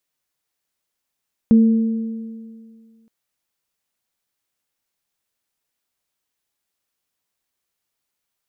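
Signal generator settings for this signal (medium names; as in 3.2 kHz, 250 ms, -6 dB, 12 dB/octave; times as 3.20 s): sine partials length 1.57 s, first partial 224 Hz, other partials 456 Hz, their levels -16.5 dB, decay 2.04 s, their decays 2.04 s, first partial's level -7 dB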